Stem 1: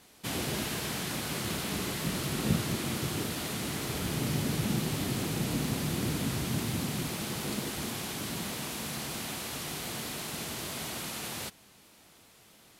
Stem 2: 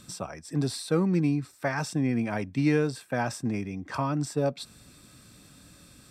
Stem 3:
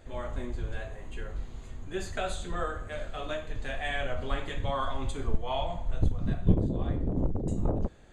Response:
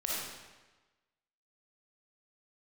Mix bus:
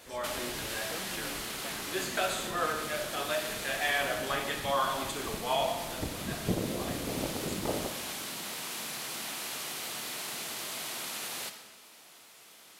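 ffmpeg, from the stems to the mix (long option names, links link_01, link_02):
-filter_complex "[0:a]acompressor=threshold=-39dB:ratio=3,volume=2dB,asplit=2[link_01][link_02];[link_02]volume=-9.5dB[link_03];[1:a]volume=-14dB[link_04];[2:a]volume=2.5dB,asplit=2[link_05][link_06];[link_06]volume=-9.5dB[link_07];[3:a]atrim=start_sample=2205[link_08];[link_03][link_07]amix=inputs=2:normalize=0[link_09];[link_09][link_08]afir=irnorm=-1:irlink=0[link_10];[link_01][link_04][link_05][link_10]amix=inputs=4:normalize=0,highpass=frequency=690:poles=1"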